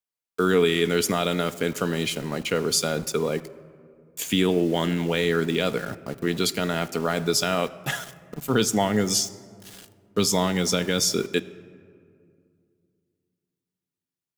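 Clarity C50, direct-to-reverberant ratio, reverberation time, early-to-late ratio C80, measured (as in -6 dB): 17.0 dB, 11.0 dB, 2.3 s, 18.0 dB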